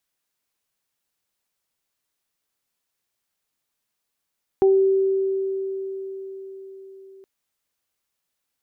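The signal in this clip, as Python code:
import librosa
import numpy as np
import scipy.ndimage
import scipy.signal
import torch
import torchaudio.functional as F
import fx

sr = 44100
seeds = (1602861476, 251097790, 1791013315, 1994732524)

y = fx.additive(sr, length_s=2.62, hz=386.0, level_db=-12.0, upper_db=(-11.0,), decay_s=4.94, upper_decays_s=(0.29,))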